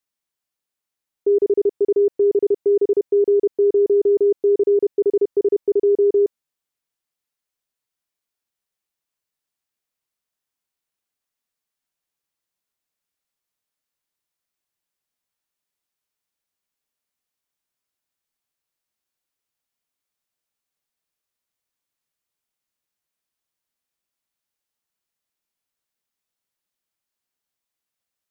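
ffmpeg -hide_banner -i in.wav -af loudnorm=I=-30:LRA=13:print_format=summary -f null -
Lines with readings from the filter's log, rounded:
Input Integrated:    -18.4 LUFS
Input True Peak:     -11.7 dBTP
Input LRA:             4.1 LU
Input Threshold:     -28.4 LUFS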